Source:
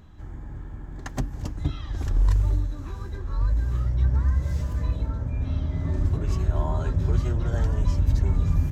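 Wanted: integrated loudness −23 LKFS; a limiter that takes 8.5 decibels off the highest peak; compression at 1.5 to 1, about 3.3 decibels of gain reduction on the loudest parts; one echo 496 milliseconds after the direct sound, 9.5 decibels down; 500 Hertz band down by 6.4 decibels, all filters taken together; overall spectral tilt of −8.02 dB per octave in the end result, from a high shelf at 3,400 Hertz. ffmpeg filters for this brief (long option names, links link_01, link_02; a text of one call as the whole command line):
ffmpeg -i in.wav -af "equalizer=frequency=500:width_type=o:gain=-9,highshelf=frequency=3400:gain=-3,acompressor=threshold=-25dB:ratio=1.5,alimiter=limit=-22.5dB:level=0:latency=1,aecho=1:1:496:0.335,volume=9dB" out.wav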